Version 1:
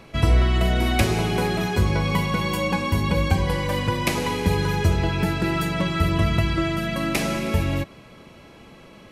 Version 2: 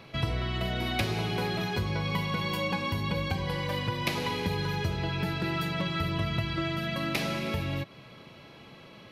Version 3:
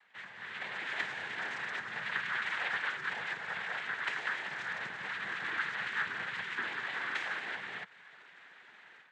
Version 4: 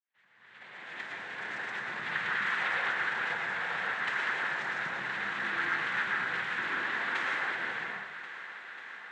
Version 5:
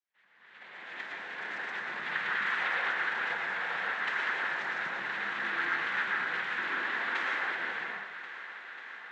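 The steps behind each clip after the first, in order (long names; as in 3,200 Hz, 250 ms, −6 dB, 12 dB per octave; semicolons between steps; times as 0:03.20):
octave-band graphic EQ 125/4,000/8,000 Hz +11/+6/−9 dB; downward compressor 1.5 to 1, threshold −25 dBFS, peak gain reduction 7 dB; low-shelf EQ 210 Hz −11.5 dB; level −3 dB
automatic gain control gain up to 10.5 dB; cochlear-implant simulation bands 6; resonant band-pass 1,700 Hz, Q 3.3; level −5 dB
fade in at the beginning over 2.24 s; feedback echo with a high-pass in the loop 541 ms, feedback 79%, high-pass 320 Hz, level −14 dB; convolution reverb RT60 0.95 s, pre-delay 102 ms, DRR −2.5 dB
band-pass filter 200–6,300 Hz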